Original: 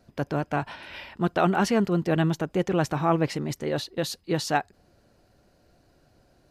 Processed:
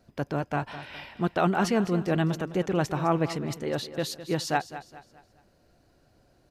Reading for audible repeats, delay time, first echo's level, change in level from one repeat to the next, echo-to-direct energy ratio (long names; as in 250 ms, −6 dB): 3, 208 ms, −13.5 dB, −8.5 dB, −13.0 dB